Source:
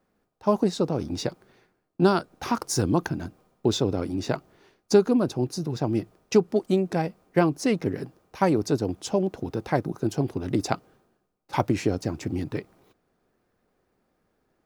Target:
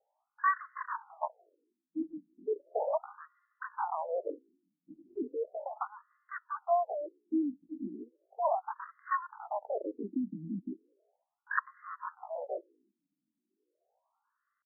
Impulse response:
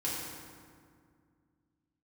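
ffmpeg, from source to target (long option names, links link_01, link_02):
-af "asetrate=80880,aresample=44100,atempo=0.545254,bass=frequency=250:gain=-2,treble=frequency=4000:gain=-6,afftfilt=real='re*between(b*sr/1024,220*pow(1500/220,0.5+0.5*sin(2*PI*0.36*pts/sr))/1.41,220*pow(1500/220,0.5+0.5*sin(2*PI*0.36*pts/sr))*1.41)':imag='im*between(b*sr/1024,220*pow(1500/220,0.5+0.5*sin(2*PI*0.36*pts/sr))/1.41,220*pow(1500/220,0.5+0.5*sin(2*PI*0.36*pts/sr))*1.41)':win_size=1024:overlap=0.75,volume=-3dB"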